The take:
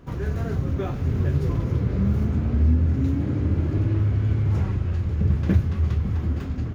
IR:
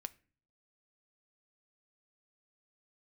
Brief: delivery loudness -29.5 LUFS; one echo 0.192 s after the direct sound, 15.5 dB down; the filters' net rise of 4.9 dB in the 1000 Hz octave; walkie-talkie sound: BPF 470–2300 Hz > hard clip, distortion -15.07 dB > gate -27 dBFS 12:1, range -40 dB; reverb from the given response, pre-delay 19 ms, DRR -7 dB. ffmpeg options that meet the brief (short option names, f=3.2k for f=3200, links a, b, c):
-filter_complex "[0:a]equalizer=f=1k:t=o:g=7,aecho=1:1:192:0.168,asplit=2[a][b];[1:a]atrim=start_sample=2205,adelay=19[c];[b][c]afir=irnorm=-1:irlink=0,volume=10.5dB[d];[a][d]amix=inputs=2:normalize=0,highpass=470,lowpass=2.3k,asoftclip=type=hard:threshold=-23dB,agate=range=-40dB:threshold=-27dB:ratio=12,volume=2dB"